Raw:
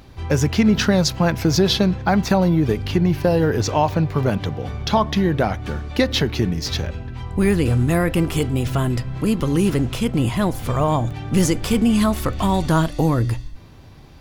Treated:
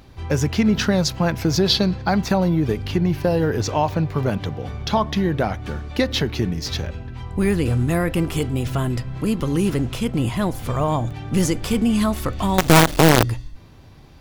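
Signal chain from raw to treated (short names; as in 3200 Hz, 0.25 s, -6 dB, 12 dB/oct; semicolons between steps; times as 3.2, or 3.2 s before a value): 1.66–2.18 bell 4500 Hz +9.5 dB 0.3 oct; 12.58–13.23 companded quantiser 2-bit; gain -2 dB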